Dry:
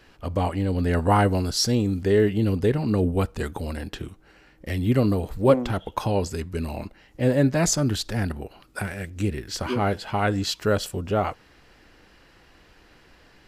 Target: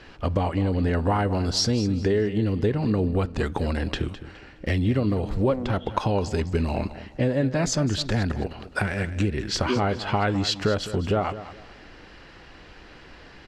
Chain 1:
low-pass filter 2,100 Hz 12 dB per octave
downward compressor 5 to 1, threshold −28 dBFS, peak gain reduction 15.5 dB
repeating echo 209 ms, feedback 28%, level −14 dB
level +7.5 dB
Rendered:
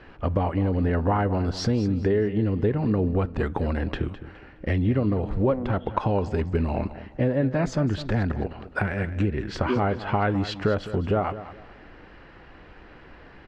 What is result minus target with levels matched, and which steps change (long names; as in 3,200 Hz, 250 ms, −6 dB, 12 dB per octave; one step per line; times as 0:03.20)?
4,000 Hz band −9.0 dB
change: low-pass filter 5,400 Hz 12 dB per octave